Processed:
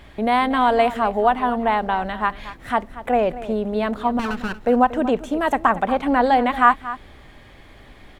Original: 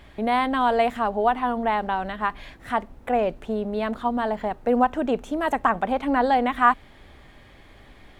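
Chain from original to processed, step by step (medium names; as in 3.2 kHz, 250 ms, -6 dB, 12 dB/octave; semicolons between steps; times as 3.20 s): 4.19–4.61 s: comb filter that takes the minimum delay 0.7 ms; on a send: delay 233 ms -15 dB; on the sum: trim +3.5 dB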